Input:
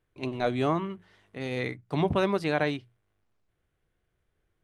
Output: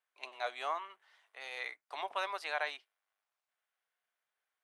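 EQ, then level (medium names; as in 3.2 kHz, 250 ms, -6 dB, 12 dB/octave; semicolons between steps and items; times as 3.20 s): high-pass 720 Hz 24 dB/octave; -4.5 dB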